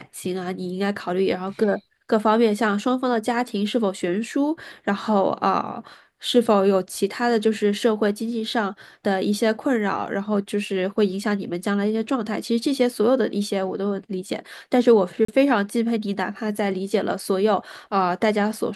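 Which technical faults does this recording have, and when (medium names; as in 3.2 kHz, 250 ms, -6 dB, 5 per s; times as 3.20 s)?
15.25–15.28 s: dropout 34 ms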